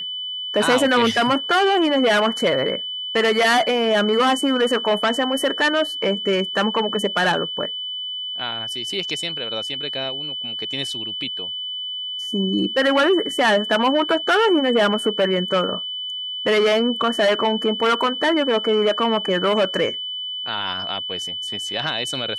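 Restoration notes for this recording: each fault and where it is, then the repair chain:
whistle 3,000 Hz −26 dBFS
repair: notch filter 3,000 Hz, Q 30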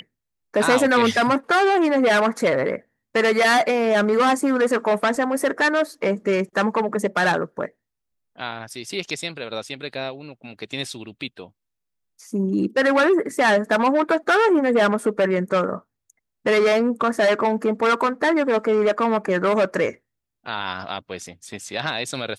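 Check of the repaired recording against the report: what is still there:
none of them is left

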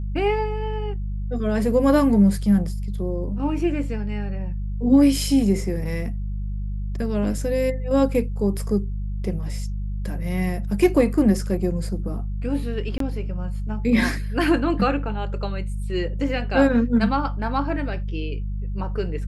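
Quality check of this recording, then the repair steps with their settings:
mains hum 50 Hz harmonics 4 −27 dBFS
0:12.98–0:13.00: drop-out 23 ms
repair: hum removal 50 Hz, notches 4
repair the gap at 0:12.98, 23 ms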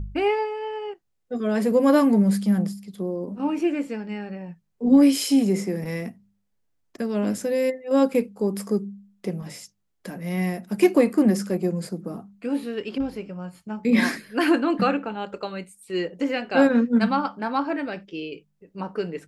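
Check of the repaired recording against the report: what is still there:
none of them is left

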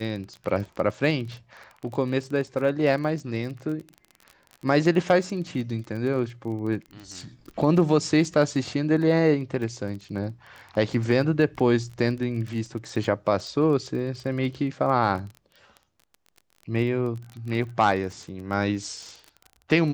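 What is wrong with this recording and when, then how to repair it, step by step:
surface crackle 26 per second −33 dBFS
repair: click removal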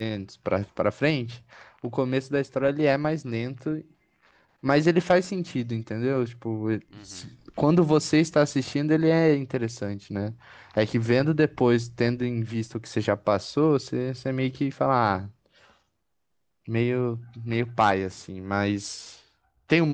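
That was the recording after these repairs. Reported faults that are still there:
none of them is left

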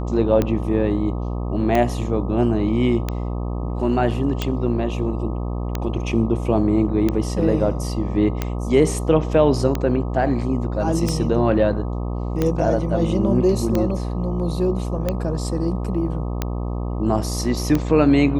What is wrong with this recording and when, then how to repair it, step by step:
mains buzz 60 Hz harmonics 21 −25 dBFS
scratch tick 45 rpm −8 dBFS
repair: click removal
hum removal 60 Hz, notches 21

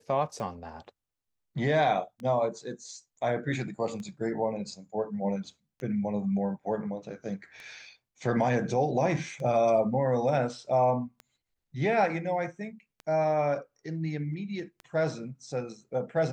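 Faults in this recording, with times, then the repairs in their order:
scratch tick 33 1/3 rpm −28 dBFS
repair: click removal

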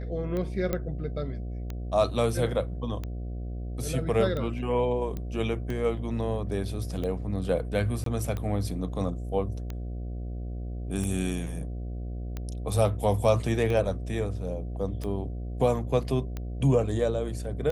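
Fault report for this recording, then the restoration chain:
mains buzz 60 Hz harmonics 12 −34 dBFS
scratch tick 45 rpm −21 dBFS
0:00.73: click −15 dBFS
0:05.17: click −22 dBFS
0:08.04–0:08.06: drop-out 23 ms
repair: click removal
hum removal 60 Hz, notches 12
repair the gap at 0:08.04, 23 ms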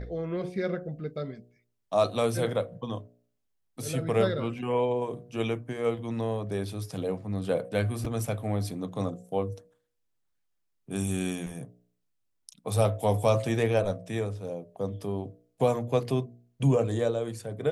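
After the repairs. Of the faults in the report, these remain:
none of them is left

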